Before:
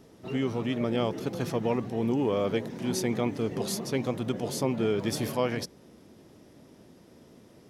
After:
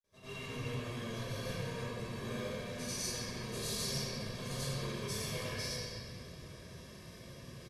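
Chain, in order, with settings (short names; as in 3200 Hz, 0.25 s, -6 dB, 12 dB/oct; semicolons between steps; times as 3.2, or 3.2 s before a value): opening faded in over 0.56 s; in parallel at -8 dB: sample-and-hold 31×; on the sum: compressor, threshold -34 dBFS, peak gain reduction 14 dB; hard clip -35 dBFS, distortion -10 dB; reverse echo 95 ms -7 dB; grains, pitch spread up and down by 0 st; reverse; upward compressor, threshold -46 dBFS; reverse; brick-wall FIR low-pass 13000 Hz; passive tone stack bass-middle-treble 5-5-5; comb 1.8 ms, depth 55%; reverb RT60 2.7 s, pre-delay 3 ms, DRR -11 dB; gain +3.5 dB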